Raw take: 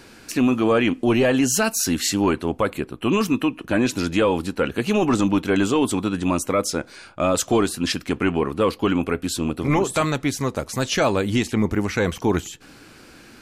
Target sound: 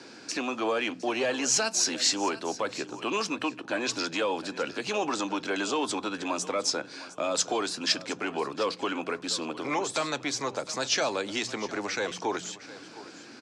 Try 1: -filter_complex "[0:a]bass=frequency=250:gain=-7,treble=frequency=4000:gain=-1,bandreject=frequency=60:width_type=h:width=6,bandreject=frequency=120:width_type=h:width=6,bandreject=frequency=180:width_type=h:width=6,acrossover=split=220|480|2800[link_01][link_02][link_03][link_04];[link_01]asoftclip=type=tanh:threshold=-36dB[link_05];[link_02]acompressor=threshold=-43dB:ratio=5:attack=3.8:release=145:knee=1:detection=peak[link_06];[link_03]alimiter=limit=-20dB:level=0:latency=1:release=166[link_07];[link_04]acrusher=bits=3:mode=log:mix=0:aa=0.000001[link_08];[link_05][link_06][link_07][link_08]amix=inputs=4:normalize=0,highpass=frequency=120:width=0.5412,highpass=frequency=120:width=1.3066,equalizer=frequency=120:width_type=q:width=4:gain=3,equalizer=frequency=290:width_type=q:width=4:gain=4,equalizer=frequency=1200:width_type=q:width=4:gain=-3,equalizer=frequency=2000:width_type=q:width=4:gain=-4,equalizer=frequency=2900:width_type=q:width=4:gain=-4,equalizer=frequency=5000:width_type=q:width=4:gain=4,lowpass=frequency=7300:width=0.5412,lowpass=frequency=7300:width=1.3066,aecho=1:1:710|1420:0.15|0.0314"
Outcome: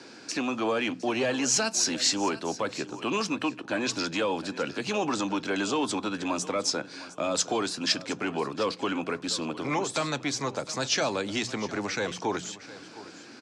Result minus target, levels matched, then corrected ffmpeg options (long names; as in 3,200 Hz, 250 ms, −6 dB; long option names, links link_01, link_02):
soft clipping: distortion −6 dB
-filter_complex "[0:a]bass=frequency=250:gain=-7,treble=frequency=4000:gain=-1,bandreject=frequency=60:width_type=h:width=6,bandreject=frequency=120:width_type=h:width=6,bandreject=frequency=180:width_type=h:width=6,acrossover=split=220|480|2800[link_01][link_02][link_03][link_04];[link_01]asoftclip=type=tanh:threshold=-47.5dB[link_05];[link_02]acompressor=threshold=-43dB:ratio=5:attack=3.8:release=145:knee=1:detection=peak[link_06];[link_03]alimiter=limit=-20dB:level=0:latency=1:release=166[link_07];[link_04]acrusher=bits=3:mode=log:mix=0:aa=0.000001[link_08];[link_05][link_06][link_07][link_08]amix=inputs=4:normalize=0,highpass=frequency=120:width=0.5412,highpass=frequency=120:width=1.3066,equalizer=frequency=120:width_type=q:width=4:gain=3,equalizer=frequency=290:width_type=q:width=4:gain=4,equalizer=frequency=1200:width_type=q:width=4:gain=-3,equalizer=frequency=2000:width_type=q:width=4:gain=-4,equalizer=frequency=2900:width_type=q:width=4:gain=-4,equalizer=frequency=5000:width_type=q:width=4:gain=4,lowpass=frequency=7300:width=0.5412,lowpass=frequency=7300:width=1.3066,aecho=1:1:710|1420:0.15|0.0314"